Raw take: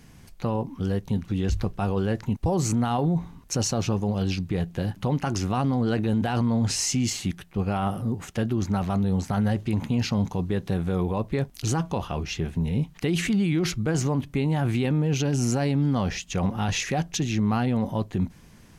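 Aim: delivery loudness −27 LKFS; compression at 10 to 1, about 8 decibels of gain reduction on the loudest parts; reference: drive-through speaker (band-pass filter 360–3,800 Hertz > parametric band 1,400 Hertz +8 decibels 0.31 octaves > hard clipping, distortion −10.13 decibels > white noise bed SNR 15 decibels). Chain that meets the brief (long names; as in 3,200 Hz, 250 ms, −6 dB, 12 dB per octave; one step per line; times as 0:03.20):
downward compressor 10 to 1, threshold −28 dBFS
band-pass filter 360–3,800 Hz
parametric band 1,400 Hz +8 dB 0.31 octaves
hard clipping −33.5 dBFS
white noise bed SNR 15 dB
level +13 dB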